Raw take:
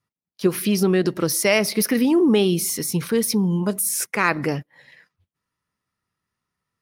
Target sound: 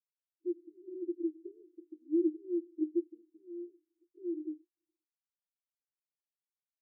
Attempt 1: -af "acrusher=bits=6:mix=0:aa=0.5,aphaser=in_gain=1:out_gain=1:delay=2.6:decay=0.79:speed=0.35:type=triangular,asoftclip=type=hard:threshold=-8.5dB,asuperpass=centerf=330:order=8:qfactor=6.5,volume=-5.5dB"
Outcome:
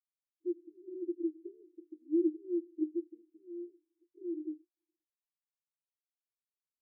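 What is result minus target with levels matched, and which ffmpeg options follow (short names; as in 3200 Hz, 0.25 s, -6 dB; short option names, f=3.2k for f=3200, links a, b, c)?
hard clip: distortion +27 dB
-af "acrusher=bits=6:mix=0:aa=0.5,aphaser=in_gain=1:out_gain=1:delay=2.6:decay=0.79:speed=0.35:type=triangular,asoftclip=type=hard:threshold=-2dB,asuperpass=centerf=330:order=8:qfactor=6.5,volume=-5.5dB"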